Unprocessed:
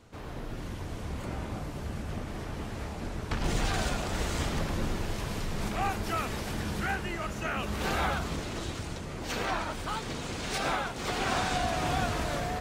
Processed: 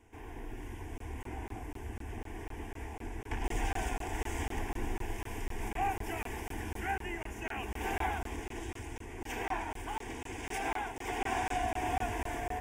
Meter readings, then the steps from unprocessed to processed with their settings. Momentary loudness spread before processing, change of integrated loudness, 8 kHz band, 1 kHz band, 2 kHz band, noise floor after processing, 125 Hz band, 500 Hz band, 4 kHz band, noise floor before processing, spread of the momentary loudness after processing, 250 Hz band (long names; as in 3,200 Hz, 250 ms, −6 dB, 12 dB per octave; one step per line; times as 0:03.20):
9 LU, −5.5 dB, −7.0 dB, −3.0 dB, −5.0 dB, −53 dBFS, −7.5 dB, −5.5 dB, −11.0 dB, −39 dBFS, 10 LU, −7.0 dB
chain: phaser with its sweep stopped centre 850 Hz, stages 8
dynamic equaliser 760 Hz, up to +3 dB, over −46 dBFS
regular buffer underruns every 0.25 s, samples 1,024, zero, from 0:00.98
level −2.5 dB